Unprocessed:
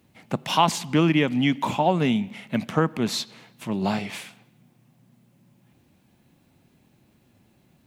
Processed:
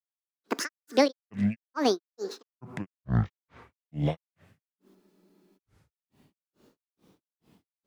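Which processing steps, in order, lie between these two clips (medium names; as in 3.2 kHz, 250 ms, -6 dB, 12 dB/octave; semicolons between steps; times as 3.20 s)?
granulator 259 ms, grains 2.3 per s, spray 380 ms, pitch spread up and down by 12 st; spectral freeze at 4.97 s, 0.58 s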